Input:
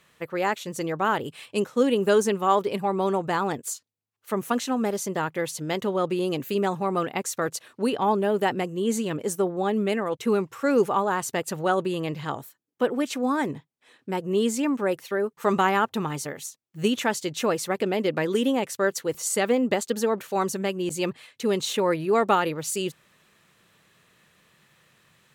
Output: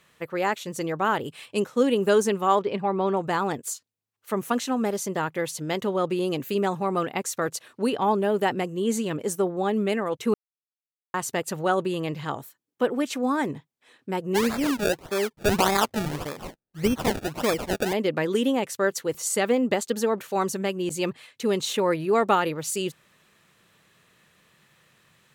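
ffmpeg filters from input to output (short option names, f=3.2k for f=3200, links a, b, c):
-filter_complex "[0:a]asettb=1/sr,asplit=3[a][b][c];[a]atrim=end=2.594[d];[b]atrim=start=2.59:end=3.17,asetpts=PTS-STARTPTS,afade=t=in:d=0.004:c=qsin,afade=t=out:st=0.576:d=0.004:c=qsin,lowpass=3.7k[e];[c]atrim=start=3.166[f];[d][e]acrossfade=d=0.004:c1=hsin:c2=qsin[g];[g][f]acrossfade=d=0.004:c1=qsin:c2=hsin,asplit=3[h][i][j];[h]afade=t=out:st=14.34:d=0.02[k];[i]acrusher=samples=29:mix=1:aa=0.000001:lfo=1:lforange=29:lforate=1.7,afade=t=in:st=14.34:d=0.02,afade=t=out:st=17.92:d=0.02[l];[j]afade=t=in:st=17.92:d=0.02[m];[k][l][m]amix=inputs=3:normalize=0,asplit=3[n][o][p];[n]atrim=end=10.34,asetpts=PTS-STARTPTS,afade=t=out:st=10.336:d=0.004:c=hsin[q];[o]atrim=start=10.34:end=11.14,asetpts=PTS-STARTPTS,volume=0[r];[p]atrim=start=11.14,asetpts=PTS-STARTPTS,afade=t=in:d=0.004:c=hsin[s];[q][r][s]concat=n=3:v=0:a=1"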